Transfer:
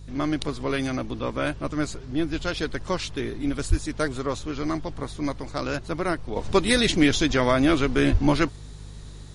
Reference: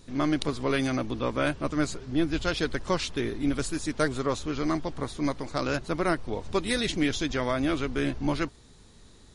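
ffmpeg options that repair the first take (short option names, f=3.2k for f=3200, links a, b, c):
-filter_complex "[0:a]bandreject=f=50.4:t=h:w=4,bandreject=f=100.8:t=h:w=4,bandreject=f=151.2:t=h:w=4,asplit=3[a][b][c];[a]afade=t=out:st=3.69:d=0.02[d];[b]highpass=f=140:w=0.5412,highpass=f=140:w=1.3066,afade=t=in:st=3.69:d=0.02,afade=t=out:st=3.81:d=0.02[e];[c]afade=t=in:st=3.81:d=0.02[f];[d][e][f]amix=inputs=3:normalize=0,asplit=3[g][h][i];[g]afade=t=out:st=8.11:d=0.02[j];[h]highpass=f=140:w=0.5412,highpass=f=140:w=1.3066,afade=t=in:st=8.11:d=0.02,afade=t=out:st=8.23:d=0.02[k];[i]afade=t=in:st=8.23:d=0.02[l];[j][k][l]amix=inputs=3:normalize=0,asetnsamples=n=441:p=0,asendcmd='6.36 volume volume -7dB',volume=0dB"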